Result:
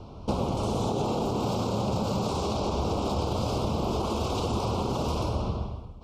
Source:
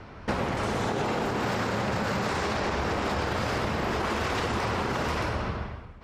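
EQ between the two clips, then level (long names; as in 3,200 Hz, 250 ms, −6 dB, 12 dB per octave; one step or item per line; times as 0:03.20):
Butterworth band-reject 1,800 Hz, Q 0.92
low-shelf EQ 230 Hz +3.5 dB
0.0 dB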